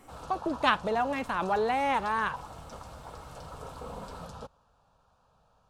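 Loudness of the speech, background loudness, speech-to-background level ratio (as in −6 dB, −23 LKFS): −29.0 LKFS, −44.5 LKFS, 15.5 dB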